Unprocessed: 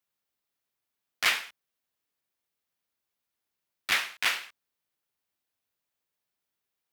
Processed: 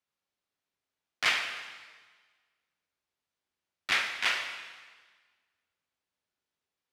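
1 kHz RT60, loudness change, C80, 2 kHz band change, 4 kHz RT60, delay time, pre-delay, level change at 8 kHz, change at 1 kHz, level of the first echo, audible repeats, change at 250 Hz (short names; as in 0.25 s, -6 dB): 1.5 s, -1.5 dB, 8.0 dB, 0.0 dB, 1.4 s, none, 5 ms, -4.5 dB, 0.0 dB, none, none, +0.5 dB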